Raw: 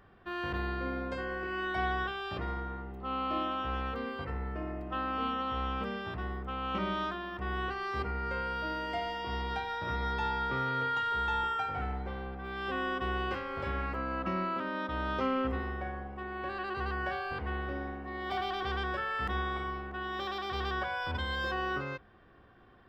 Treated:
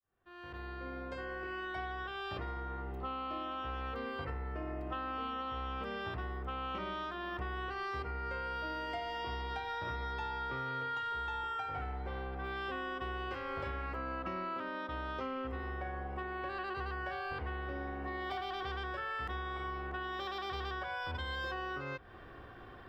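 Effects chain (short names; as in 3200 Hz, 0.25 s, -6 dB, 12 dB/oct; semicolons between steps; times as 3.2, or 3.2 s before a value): opening faded in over 5.10 s; bell 200 Hz -7.5 dB 0.48 oct; compressor 8:1, threshold -45 dBFS, peak gain reduction 17 dB; gain +8.5 dB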